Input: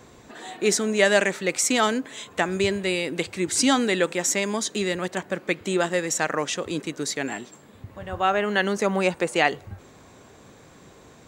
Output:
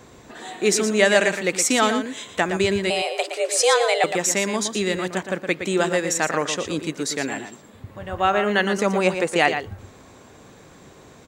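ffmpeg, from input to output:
-filter_complex "[0:a]asettb=1/sr,asplit=3[s0][s1][s2];[s0]atrim=end=2.904[s3];[s1]atrim=start=2.9:end=4.04,asetpts=PTS-STARTPTS,afade=t=in:d=0.004:c=qsin,afade=t=out:st=1.136:d=0.004:c=qsin,afreqshift=230[s4];[s2]atrim=start=4.036[s5];[s3][s4]acrossfade=d=0.004:c1=hsin:c2=qsin[s6];[s6][s5]acrossfade=d=0.004:c1=qsin:c2=hsin,asplit=2[s7][s8];[s8]adelay=116.6,volume=0.398,highshelf=f=4000:g=-2.62[s9];[s7][s9]amix=inputs=2:normalize=0,volume=1.26"

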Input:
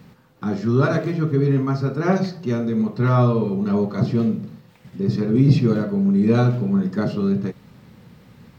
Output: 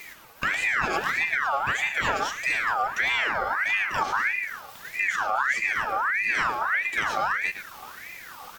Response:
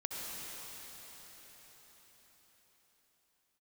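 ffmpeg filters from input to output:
-filter_complex "[0:a]acompressor=threshold=0.0501:ratio=6,asplit=2[s0][s1];[s1]adelay=110,highpass=300,lowpass=3400,asoftclip=type=hard:threshold=0.0473,volume=0.501[s2];[s0][s2]amix=inputs=2:normalize=0,crystalizer=i=4:c=0,asplit=2[s3][s4];[s4]aecho=0:1:848:0.0708[s5];[s3][s5]amix=inputs=2:normalize=0,aeval=exprs='val(0)*sin(2*PI*1600*n/s+1600*0.4/1.6*sin(2*PI*1.6*n/s))':c=same,volume=1.78"

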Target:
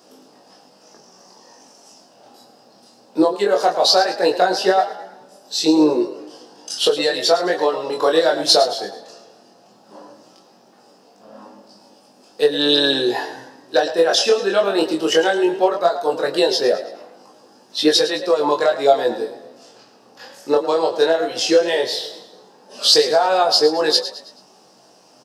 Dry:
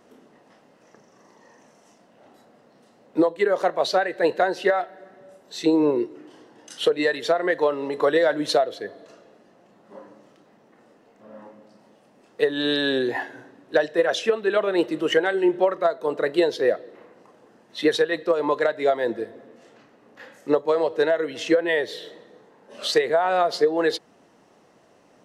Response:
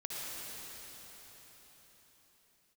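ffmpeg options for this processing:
-filter_complex "[0:a]equalizer=f=800:t=o:w=0.33:g=6,equalizer=f=2000:t=o:w=0.33:g=-10,equalizer=f=5000:t=o:w=0.33:g=12,asplit=5[s0][s1][s2][s3][s4];[s1]adelay=108,afreqshift=33,volume=0.237[s5];[s2]adelay=216,afreqshift=66,volume=0.1[s6];[s3]adelay=324,afreqshift=99,volume=0.0417[s7];[s4]adelay=432,afreqshift=132,volume=0.0176[s8];[s0][s5][s6][s7][s8]amix=inputs=5:normalize=0,flanger=delay=19.5:depth=5.6:speed=0.17,highpass=130,highshelf=f=3500:g=10.5,asplit=2[s9][s10];[s10]adelay=16,volume=0.299[s11];[s9][s11]amix=inputs=2:normalize=0,volume=1.88"

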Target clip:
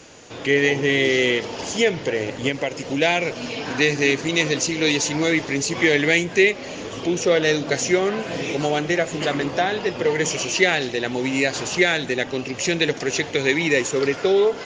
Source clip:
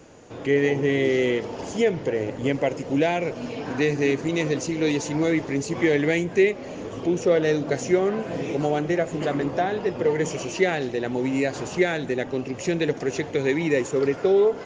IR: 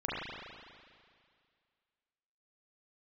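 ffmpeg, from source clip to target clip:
-filter_complex "[0:a]equalizer=f=4200:w=0.39:g=12.5,asettb=1/sr,asplit=3[s0][s1][s2];[s0]atrim=end=2.484[s3];[s1]atrim=start=2.48:end=3.02,asetpts=PTS-STARTPTS,afade=t=in:d=0.004:c=qsin,afade=t=out:st=0.536:d=0.004:c=qsin,acompressor=threshold=0.0891:ratio=3[s4];[s2]atrim=start=3.016[s5];[s3][s4]acrossfade=d=0.004:c1=hsin:c2=qsin[s6];[s6][s5]acrossfade=d=0.004:c1=qsin:c2=hsin"

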